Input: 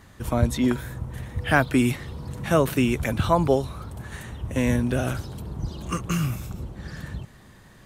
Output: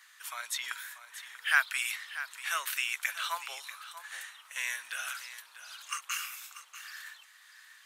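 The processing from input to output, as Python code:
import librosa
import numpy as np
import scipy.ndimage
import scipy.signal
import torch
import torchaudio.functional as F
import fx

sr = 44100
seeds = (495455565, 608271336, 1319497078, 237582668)

y = scipy.signal.sosfilt(scipy.signal.butter(4, 1400.0, 'highpass', fs=sr, output='sos'), x)
y = y + 10.0 ** (-13.0 / 20.0) * np.pad(y, (int(639 * sr / 1000.0), 0))[:len(y)]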